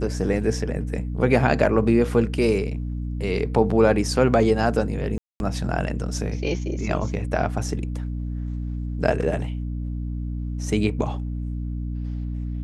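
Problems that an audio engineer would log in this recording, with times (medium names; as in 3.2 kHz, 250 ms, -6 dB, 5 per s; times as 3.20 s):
hum 60 Hz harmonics 5 -28 dBFS
5.18–5.40 s: dropout 221 ms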